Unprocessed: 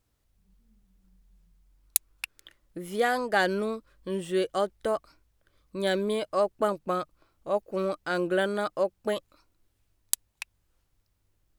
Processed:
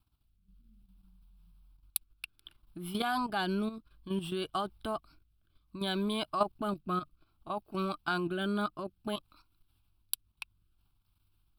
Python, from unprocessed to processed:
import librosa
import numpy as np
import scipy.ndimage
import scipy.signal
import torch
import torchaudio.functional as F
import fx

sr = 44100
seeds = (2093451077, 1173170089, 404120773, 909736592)

y = fx.rotary(x, sr, hz=0.6)
y = fx.level_steps(y, sr, step_db=11)
y = fx.fixed_phaser(y, sr, hz=1900.0, stages=6)
y = y * 10.0 ** (7.0 / 20.0)